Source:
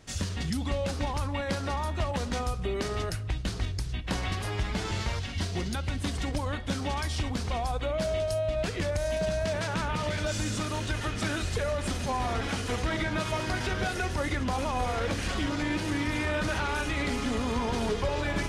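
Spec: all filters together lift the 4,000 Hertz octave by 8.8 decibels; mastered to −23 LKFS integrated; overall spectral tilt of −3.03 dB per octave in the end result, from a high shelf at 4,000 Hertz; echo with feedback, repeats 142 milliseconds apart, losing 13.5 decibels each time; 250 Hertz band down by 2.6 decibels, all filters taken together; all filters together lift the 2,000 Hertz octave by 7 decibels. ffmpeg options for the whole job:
ffmpeg -i in.wav -af "equalizer=frequency=250:width_type=o:gain=-3.5,equalizer=frequency=2000:width_type=o:gain=6,highshelf=frequency=4000:gain=8,equalizer=frequency=4000:width_type=o:gain=4.5,aecho=1:1:142|284:0.211|0.0444,volume=4dB" out.wav

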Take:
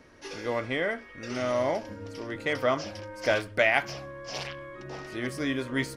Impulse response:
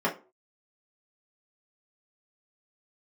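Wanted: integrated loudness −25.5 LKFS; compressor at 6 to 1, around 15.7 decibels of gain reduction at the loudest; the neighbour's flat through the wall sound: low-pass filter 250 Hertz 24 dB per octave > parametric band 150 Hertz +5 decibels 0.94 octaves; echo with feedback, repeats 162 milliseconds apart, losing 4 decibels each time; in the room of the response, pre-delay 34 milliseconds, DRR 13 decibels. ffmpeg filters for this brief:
-filter_complex "[0:a]acompressor=threshold=-36dB:ratio=6,aecho=1:1:162|324|486|648|810|972|1134|1296|1458:0.631|0.398|0.25|0.158|0.0994|0.0626|0.0394|0.0249|0.0157,asplit=2[link_01][link_02];[1:a]atrim=start_sample=2205,adelay=34[link_03];[link_02][link_03]afir=irnorm=-1:irlink=0,volume=-25dB[link_04];[link_01][link_04]amix=inputs=2:normalize=0,lowpass=frequency=250:width=0.5412,lowpass=frequency=250:width=1.3066,equalizer=frequency=150:width_type=o:width=0.94:gain=5,volume=19.5dB"

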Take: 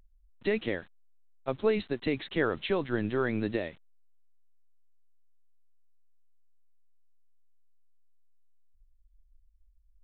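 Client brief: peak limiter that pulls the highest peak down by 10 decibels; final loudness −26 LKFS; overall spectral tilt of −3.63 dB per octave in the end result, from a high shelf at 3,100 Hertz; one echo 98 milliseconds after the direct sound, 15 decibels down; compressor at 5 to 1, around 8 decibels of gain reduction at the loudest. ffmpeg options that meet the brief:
ffmpeg -i in.wav -af "highshelf=frequency=3100:gain=4.5,acompressor=threshold=-31dB:ratio=5,alimiter=level_in=5dB:limit=-24dB:level=0:latency=1,volume=-5dB,aecho=1:1:98:0.178,volume=14.5dB" out.wav

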